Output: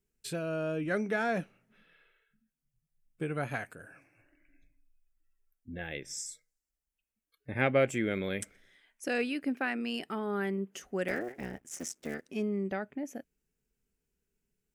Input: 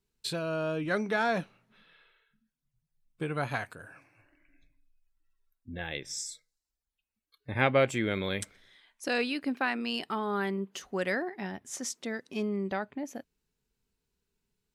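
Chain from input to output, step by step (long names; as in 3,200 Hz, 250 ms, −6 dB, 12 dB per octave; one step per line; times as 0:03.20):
0:11.08–0:12.29: sub-harmonics by changed cycles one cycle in 3, muted
graphic EQ with 15 bands 100 Hz −5 dB, 1,000 Hz −9 dB, 4,000 Hz −11 dB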